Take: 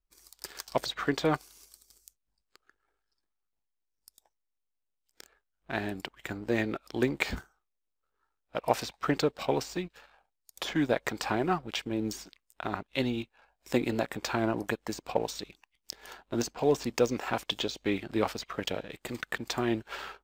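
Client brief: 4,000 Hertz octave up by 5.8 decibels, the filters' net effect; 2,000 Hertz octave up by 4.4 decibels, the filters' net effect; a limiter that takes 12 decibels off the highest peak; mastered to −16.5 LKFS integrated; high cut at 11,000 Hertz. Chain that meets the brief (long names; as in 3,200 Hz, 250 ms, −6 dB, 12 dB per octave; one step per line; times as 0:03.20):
low-pass filter 11,000 Hz
parametric band 2,000 Hz +4 dB
parametric band 4,000 Hz +6 dB
level +16.5 dB
brickwall limiter −1 dBFS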